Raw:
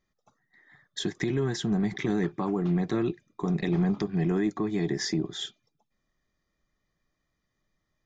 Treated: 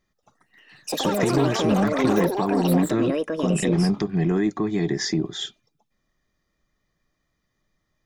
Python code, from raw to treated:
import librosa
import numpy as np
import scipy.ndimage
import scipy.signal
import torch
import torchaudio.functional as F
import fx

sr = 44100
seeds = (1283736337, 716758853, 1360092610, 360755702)

y = fx.echo_pitch(x, sr, ms=228, semitones=7, count=3, db_per_echo=-3.0)
y = y * 10.0 ** (4.5 / 20.0)